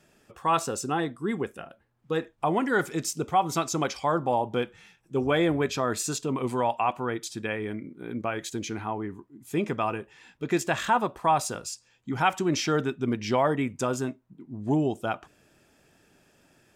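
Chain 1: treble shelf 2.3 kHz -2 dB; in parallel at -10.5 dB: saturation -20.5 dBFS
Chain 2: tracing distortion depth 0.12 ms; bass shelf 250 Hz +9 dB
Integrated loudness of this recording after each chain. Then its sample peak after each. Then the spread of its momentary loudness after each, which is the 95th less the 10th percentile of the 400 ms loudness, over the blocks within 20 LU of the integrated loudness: -26.5 LUFS, -25.5 LUFS; -10.0 dBFS, -9.0 dBFS; 11 LU, 11 LU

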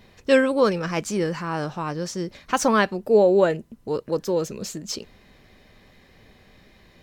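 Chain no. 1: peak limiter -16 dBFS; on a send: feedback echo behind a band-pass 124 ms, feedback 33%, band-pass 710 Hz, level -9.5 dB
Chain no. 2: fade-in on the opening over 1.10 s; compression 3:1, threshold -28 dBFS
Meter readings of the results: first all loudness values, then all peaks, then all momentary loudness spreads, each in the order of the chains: -26.5 LUFS, -31.5 LUFS; -13.5 dBFS, -15.5 dBFS; 9 LU, 6 LU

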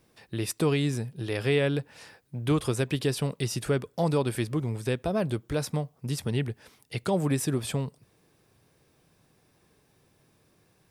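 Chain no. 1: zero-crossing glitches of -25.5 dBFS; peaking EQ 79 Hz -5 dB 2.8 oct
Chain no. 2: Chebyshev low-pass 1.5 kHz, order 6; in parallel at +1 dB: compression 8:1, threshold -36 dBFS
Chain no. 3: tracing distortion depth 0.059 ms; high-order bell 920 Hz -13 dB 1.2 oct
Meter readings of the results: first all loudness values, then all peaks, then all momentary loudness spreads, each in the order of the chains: -29.0 LUFS, -28.0 LUFS, -29.5 LUFS; -13.5 dBFS, -13.0 dBFS, -14.0 dBFS; 5 LU, 8 LU, 9 LU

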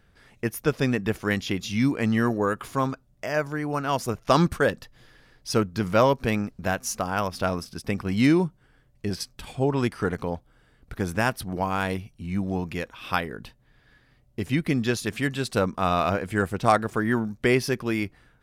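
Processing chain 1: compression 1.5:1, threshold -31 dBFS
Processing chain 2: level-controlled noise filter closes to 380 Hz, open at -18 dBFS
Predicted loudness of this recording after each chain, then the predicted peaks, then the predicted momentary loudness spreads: -30.5 LUFS, -26.0 LUFS; -11.0 dBFS, -5.0 dBFS; 8 LU, 12 LU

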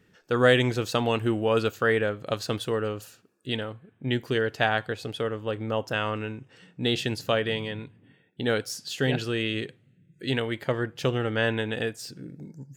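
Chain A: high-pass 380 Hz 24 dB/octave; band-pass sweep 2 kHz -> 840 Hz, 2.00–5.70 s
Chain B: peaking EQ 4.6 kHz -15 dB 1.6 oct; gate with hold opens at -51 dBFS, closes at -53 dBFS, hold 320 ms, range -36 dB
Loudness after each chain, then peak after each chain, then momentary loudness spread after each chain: -37.0 LUFS, -28.5 LUFS; -14.5 dBFS, -9.0 dBFS; 16 LU, 14 LU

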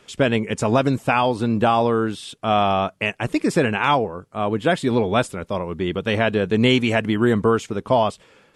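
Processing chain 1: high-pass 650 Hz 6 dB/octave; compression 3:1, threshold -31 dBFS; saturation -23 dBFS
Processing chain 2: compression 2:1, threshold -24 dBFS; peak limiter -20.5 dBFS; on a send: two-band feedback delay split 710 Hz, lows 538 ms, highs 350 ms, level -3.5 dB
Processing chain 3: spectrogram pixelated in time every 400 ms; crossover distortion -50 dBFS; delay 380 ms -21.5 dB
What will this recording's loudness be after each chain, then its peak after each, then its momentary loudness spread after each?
-34.5 LUFS, -29.0 LUFS, -24.0 LUFS; -23.0 dBFS, -14.0 dBFS, -8.5 dBFS; 4 LU, 3 LU, 9 LU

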